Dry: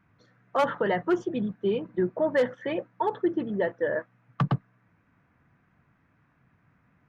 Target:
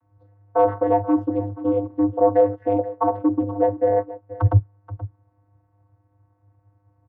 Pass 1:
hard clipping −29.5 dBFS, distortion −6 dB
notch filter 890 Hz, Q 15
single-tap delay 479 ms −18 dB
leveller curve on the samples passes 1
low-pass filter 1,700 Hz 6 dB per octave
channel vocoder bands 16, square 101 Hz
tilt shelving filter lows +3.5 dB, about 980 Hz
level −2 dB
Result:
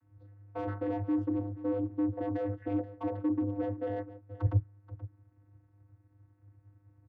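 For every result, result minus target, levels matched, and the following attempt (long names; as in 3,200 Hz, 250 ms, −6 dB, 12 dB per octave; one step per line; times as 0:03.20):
hard clipping: distortion +16 dB; 1,000 Hz band −7.0 dB
hard clipping −18.5 dBFS, distortion −22 dB
notch filter 890 Hz, Q 15
single-tap delay 479 ms −18 dB
leveller curve on the samples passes 1
low-pass filter 1,700 Hz 6 dB per octave
channel vocoder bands 16, square 101 Hz
tilt shelving filter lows +3.5 dB, about 980 Hz
level −2 dB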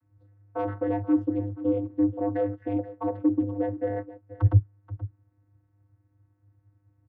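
1,000 Hz band −7.0 dB
hard clipping −18.5 dBFS, distortion −22 dB
notch filter 890 Hz, Q 15
single-tap delay 479 ms −18 dB
leveller curve on the samples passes 1
low-pass filter 1,700 Hz 6 dB per octave
flat-topped bell 760 Hz +11.5 dB 1.3 octaves
channel vocoder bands 16, square 101 Hz
tilt shelving filter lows +3.5 dB, about 980 Hz
level −2 dB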